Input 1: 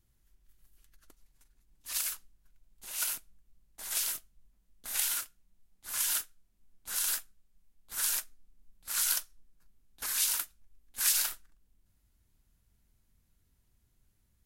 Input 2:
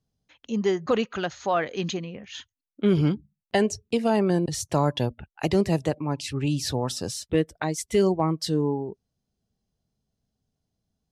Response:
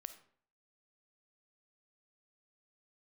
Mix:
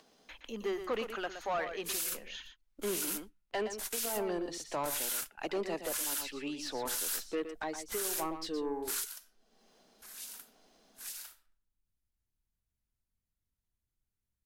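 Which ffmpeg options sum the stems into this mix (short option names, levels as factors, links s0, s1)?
-filter_complex "[0:a]volume=1.33,asplit=2[s0][s1];[s1]volume=0.158[s2];[1:a]highpass=f=230:w=0.5412,highpass=f=230:w=1.3066,acompressor=mode=upward:threshold=0.0178:ratio=2.5,asplit=2[s3][s4];[s4]highpass=f=720:p=1,volume=8.91,asoftclip=type=tanh:threshold=0.398[s5];[s3][s5]amix=inputs=2:normalize=0,lowpass=f=2700:p=1,volume=0.501,volume=0.158,asplit=3[s6][s7][s8];[s7]volume=0.335[s9];[s8]apad=whole_len=637653[s10];[s0][s10]sidechaingate=range=0.0224:threshold=0.00141:ratio=16:detection=peak[s11];[2:a]atrim=start_sample=2205[s12];[s2][s12]afir=irnorm=-1:irlink=0[s13];[s9]aecho=0:1:118:1[s14];[s11][s6][s13][s14]amix=inputs=4:normalize=0,alimiter=level_in=1.19:limit=0.0631:level=0:latency=1:release=20,volume=0.841"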